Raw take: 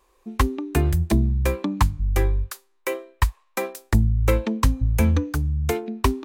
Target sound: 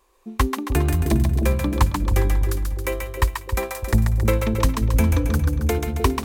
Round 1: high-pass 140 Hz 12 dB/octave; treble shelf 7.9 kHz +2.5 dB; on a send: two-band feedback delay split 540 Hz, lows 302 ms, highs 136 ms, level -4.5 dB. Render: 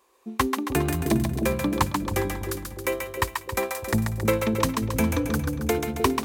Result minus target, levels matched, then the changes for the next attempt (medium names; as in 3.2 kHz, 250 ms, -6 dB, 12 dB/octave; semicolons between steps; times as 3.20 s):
125 Hz band -4.0 dB
remove: high-pass 140 Hz 12 dB/octave